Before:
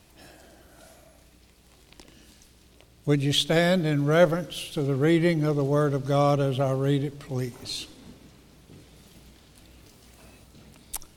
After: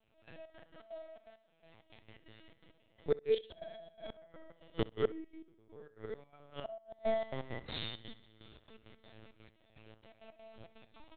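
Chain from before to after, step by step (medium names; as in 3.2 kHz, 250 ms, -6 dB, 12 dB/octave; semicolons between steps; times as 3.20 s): chord resonator A3 fifth, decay 0.58 s; spring tank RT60 2.4 s, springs 39 ms, chirp 45 ms, DRR 0.5 dB; dynamic bell 690 Hz, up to +7 dB, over -58 dBFS, Q 6.6; LPC vocoder at 8 kHz pitch kept; peaking EQ 69 Hz +3.5 dB 0.51 oct; inverted gate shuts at -34 dBFS, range -28 dB; trance gate "...xx.x.x.xxx.x" 166 bpm -12 dB; on a send: feedback delay 64 ms, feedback 16%, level -20 dB; on the sum: trim +15.5 dB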